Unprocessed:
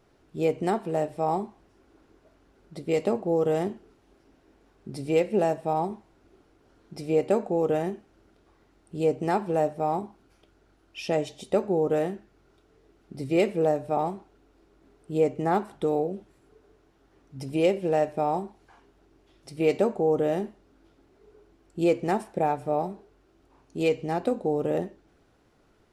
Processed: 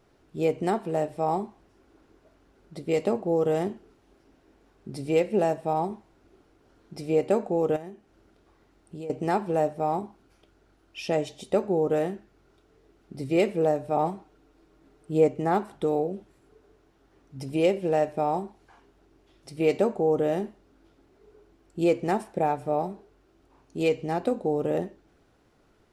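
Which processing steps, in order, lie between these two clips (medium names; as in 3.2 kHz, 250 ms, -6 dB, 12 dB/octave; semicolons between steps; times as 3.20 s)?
7.76–9.10 s: compression 4:1, threshold -38 dBFS, peak gain reduction 16 dB; 13.94–15.28 s: comb 6.5 ms, depth 38%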